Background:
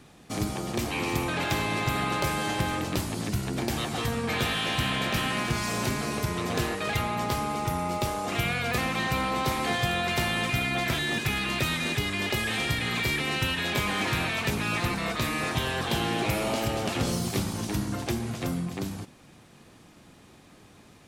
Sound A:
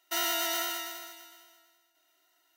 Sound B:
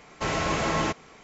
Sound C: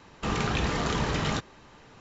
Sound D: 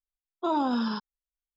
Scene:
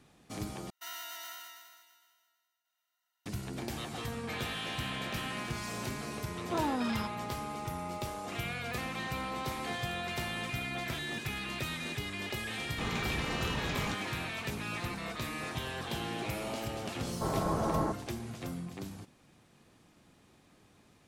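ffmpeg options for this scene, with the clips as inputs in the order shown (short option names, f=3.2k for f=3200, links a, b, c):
-filter_complex "[0:a]volume=-9.5dB[a];[1:a]lowshelf=f=670:t=q:w=1.5:g=-11[b];[3:a]acrusher=bits=8:mix=0:aa=0.5[c];[2:a]lowpass=f=1.2k:w=0.5412,lowpass=f=1.2k:w=1.3066[d];[a]asplit=2[e][f];[e]atrim=end=0.704[g];[b]atrim=end=2.56,asetpts=PTS-STARTPTS,volume=-13.5dB[h];[f]atrim=start=3.256[i];[4:a]atrim=end=1.56,asetpts=PTS-STARTPTS,volume=-6.5dB,afade=t=in:d=0.004:c=hsin,afade=t=out:st=1.556:d=0.004:c=hsin,adelay=6080[j];[c]atrim=end=2,asetpts=PTS-STARTPTS,volume=-8.5dB,afade=t=in:d=0.004:c=hsin,afade=t=out:st=1.996:d=0.004:c=hsin,adelay=12550[k];[d]atrim=end=1.23,asetpts=PTS-STARTPTS,volume=-4dB,afade=t=in:d=0.004:c=hsin,afade=t=out:st=1.226:d=0.004:c=hsin,adelay=749700S[l];[g][h]acrossfade=d=0.004:c1=hsin:c2=hsin[m];[m][i]acrossfade=d=0.004:c1=hsin:c2=hsin[n];[n][j][k][l]amix=inputs=4:normalize=0"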